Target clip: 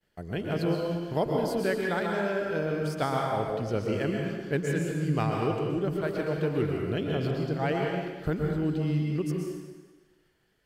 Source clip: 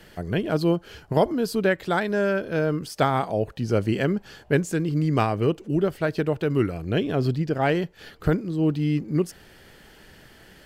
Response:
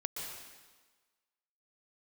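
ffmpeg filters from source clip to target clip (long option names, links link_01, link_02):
-filter_complex "[0:a]agate=range=-33dB:threshold=-38dB:ratio=3:detection=peak[link_01];[1:a]atrim=start_sample=2205[link_02];[link_01][link_02]afir=irnorm=-1:irlink=0,volume=-6dB"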